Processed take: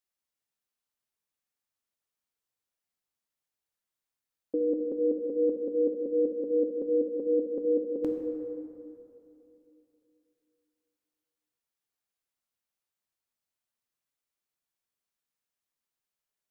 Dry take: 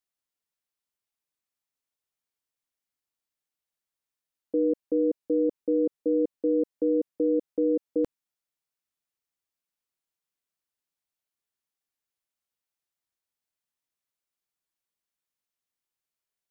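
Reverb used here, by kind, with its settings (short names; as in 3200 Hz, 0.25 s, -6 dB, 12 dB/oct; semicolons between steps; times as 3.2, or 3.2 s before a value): plate-style reverb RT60 3 s, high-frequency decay 0.45×, DRR 2.5 dB; gain -2 dB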